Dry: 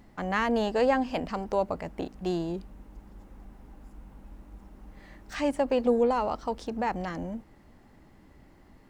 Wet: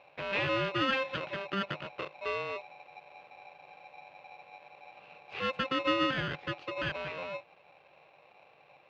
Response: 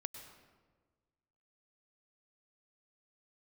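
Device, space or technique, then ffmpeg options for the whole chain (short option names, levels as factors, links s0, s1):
ring modulator pedal into a guitar cabinet: -af "aeval=exprs='val(0)*sgn(sin(2*PI*790*n/s))':c=same,highpass=100,equalizer=f=150:t=q:w=4:g=8,equalizer=f=230:t=q:w=4:g=-7,equalizer=f=350:t=q:w=4:g=3,equalizer=f=580:t=q:w=4:g=6,equalizer=f=950:t=q:w=4:g=-3,equalizer=f=2600:t=q:w=4:g=8,lowpass=f=3800:w=0.5412,lowpass=f=3800:w=1.3066,volume=0.473"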